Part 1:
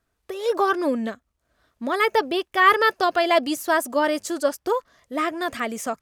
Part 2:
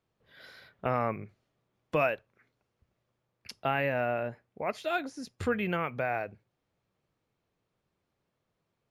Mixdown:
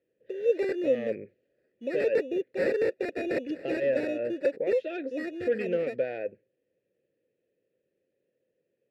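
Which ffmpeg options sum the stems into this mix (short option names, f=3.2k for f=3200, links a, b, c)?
-filter_complex "[0:a]equalizer=f=4.4k:t=o:w=0.67:g=-6.5,acrusher=samples=14:mix=1:aa=0.000001,aeval=exprs='(mod(4.22*val(0)+1,2)-1)/4.22':c=same,volume=-2dB,asplit=2[a][b];[1:a]aeval=exprs='0.158*sin(PI/2*2*val(0)/0.158)':c=same,volume=-1.5dB[c];[b]apad=whole_len=392732[d];[c][d]sidechaincompress=threshold=-27dB:ratio=8:attack=28:release=121[e];[a][e]amix=inputs=2:normalize=0,asplit=3[f][g][h];[f]bandpass=f=530:t=q:w=8,volume=0dB[i];[g]bandpass=f=1.84k:t=q:w=8,volume=-6dB[j];[h]bandpass=f=2.48k:t=q:w=8,volume=-9dB[k];[i][j][k]amix=inputs=3:normalize=0,lowshelf=f=510:t=q:w=1.5:g=10.5"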